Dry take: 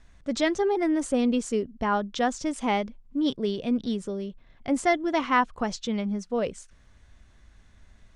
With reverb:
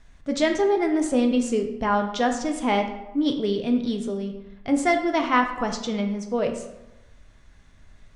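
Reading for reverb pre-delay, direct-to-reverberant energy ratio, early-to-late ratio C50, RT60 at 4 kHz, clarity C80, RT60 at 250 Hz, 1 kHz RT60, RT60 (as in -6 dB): 3 ms, 4.0 dB, 7.5 dB, 0.60 s, 10.0 dB, 1.0 s, 1.0 s, 1.0 s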